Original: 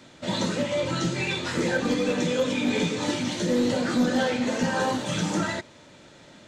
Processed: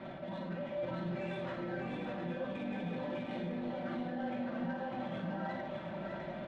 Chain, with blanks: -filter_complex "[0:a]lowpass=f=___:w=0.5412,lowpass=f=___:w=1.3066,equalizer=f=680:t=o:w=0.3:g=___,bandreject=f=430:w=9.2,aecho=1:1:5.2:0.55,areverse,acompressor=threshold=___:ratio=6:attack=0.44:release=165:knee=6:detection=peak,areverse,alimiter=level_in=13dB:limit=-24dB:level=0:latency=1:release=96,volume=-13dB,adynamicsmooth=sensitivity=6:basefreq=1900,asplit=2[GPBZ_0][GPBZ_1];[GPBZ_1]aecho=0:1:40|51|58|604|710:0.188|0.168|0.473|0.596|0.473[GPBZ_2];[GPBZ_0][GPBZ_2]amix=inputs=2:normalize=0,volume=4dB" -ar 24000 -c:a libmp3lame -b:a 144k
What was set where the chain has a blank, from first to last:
3800, 3800, 10.5, -33dB